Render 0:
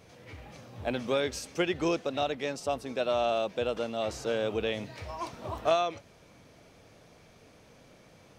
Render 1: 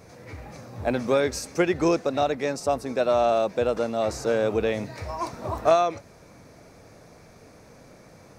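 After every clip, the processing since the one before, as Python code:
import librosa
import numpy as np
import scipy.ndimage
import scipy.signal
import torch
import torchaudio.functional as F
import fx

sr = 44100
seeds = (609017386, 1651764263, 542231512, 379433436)

y = fx.peak_eq(x, sr, hz=3100.0, db=-13.0, octaves=0.48)
y = y * librosa.db_to_amplitude(7.0)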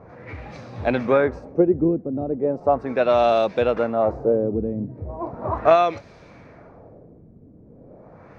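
y = fx.filter_lfo_lowpass(x, sr, shape='sine', hz=0.37, low_hz=260.0, high_hz=3800.0, q=1.3)
y = y * librosa.db_to_amplitude(3.5)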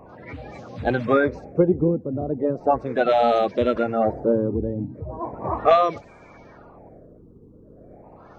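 y = fx.spec_quant(x, sr, step_db=30)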